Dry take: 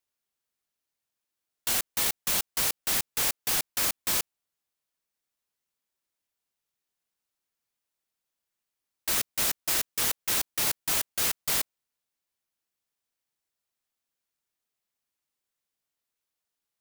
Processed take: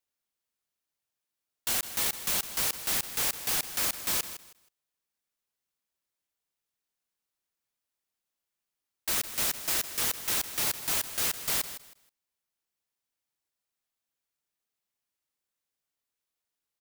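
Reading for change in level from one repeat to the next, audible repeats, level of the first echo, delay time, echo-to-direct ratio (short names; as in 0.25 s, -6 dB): -13.0 dB, 2, -12.5 dB, 0.159 s, -12.5 dB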